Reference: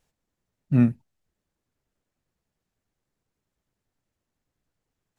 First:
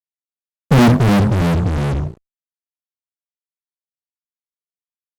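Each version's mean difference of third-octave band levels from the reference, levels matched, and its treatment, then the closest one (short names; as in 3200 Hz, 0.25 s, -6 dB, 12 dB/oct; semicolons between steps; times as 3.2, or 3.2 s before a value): 14.0 dB: notches 50/100/150/200/250/300 Hz; in parallel at -1.5 dB: compressor 5:1, threshold -32 dBFS, peak gain reduction 16 dB; on the sum: fuzz box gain 40 dB, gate -47 dBFS; echoes that change speed 0.151 s, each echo -3 st, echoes 3; gain +5 dB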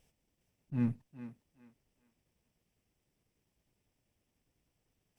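3.0 dB: minimum comb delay 0.36 ms; compressor 6:1, threshold -23 dBFS, peak gain reduction 9.5 dB; auto swell 0.241 s; on a send: thinning echo 0.41 s, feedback 29%, high-pass 330 Hz, level -10 dB; on the sum: gain +3 dB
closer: second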